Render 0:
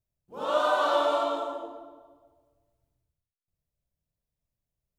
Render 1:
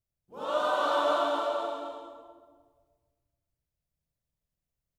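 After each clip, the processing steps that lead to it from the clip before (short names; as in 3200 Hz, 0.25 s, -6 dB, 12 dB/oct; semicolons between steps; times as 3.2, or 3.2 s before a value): bouncing-ball echo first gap 0.24 s, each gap 0.75×, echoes 5; gain -3.5 dB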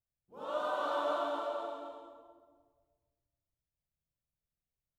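bell 5900 Hz -4.5 dB 2.7 oct; gain -6.5 dB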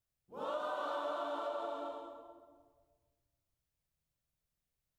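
compressor, threshold -39 dBFS, peak gain reduction 9.5 dB; gain +3.5 dB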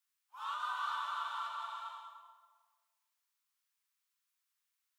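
steep high-pass 970 Hz 48 dB/oct; gain +5 dB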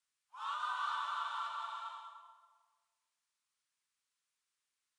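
downsampling 22050 Hz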